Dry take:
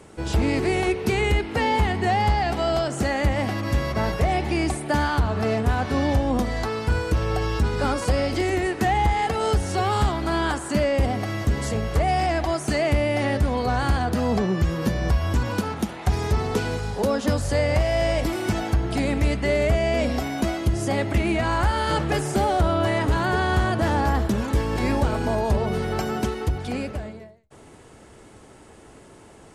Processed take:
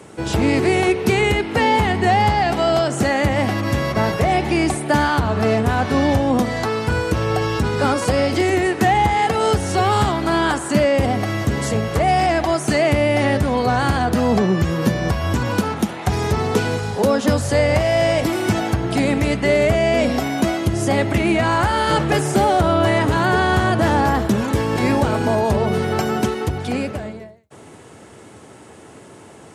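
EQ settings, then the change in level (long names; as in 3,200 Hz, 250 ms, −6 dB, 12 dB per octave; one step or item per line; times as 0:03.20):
high-pass filter 87 Hz 24 dB per octave
parametric band 4,700 Hz −2 dB 0.22 octaves
+6.0 dB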